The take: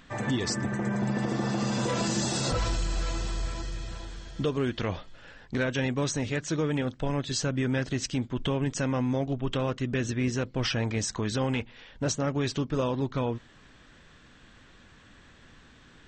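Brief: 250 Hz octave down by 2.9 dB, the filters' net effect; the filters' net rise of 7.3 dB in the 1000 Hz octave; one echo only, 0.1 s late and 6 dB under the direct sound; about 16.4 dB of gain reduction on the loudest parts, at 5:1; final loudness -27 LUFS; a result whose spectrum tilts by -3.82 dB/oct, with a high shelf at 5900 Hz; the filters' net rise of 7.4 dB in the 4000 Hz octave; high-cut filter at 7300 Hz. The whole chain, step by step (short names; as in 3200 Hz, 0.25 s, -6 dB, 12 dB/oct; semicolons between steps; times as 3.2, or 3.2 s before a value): LPF 7300 Hz; bell 250 Hz -4 dB; bell 1000 Hz +8.5 dB; bell 4000 Hz +8 dB; high shelf 5900 Hz +4 dB; compressor 5:1, threshold -41 dBFS; echo 0.1 s -6 dB; gain +15 dB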